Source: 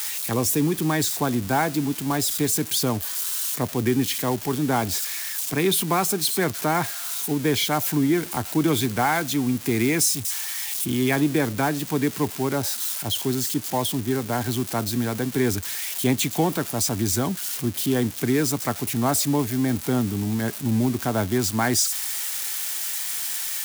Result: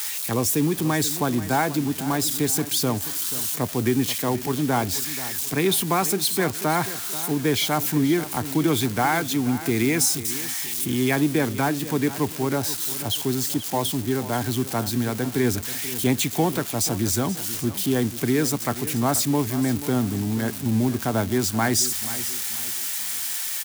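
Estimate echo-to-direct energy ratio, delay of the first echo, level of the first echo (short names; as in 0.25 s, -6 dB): -14.0 dB, 0.483 s, -14.5 dB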